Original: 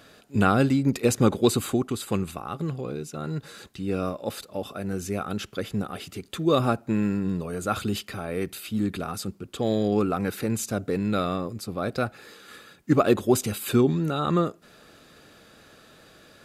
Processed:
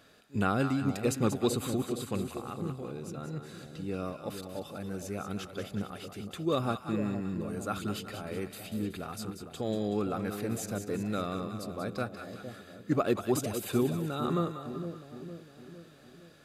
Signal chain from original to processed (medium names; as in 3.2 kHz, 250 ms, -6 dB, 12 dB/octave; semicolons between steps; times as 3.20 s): two-band feedback delay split 720 Hz, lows 459 ms, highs 187 ms, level -8 dB; trim -8 dB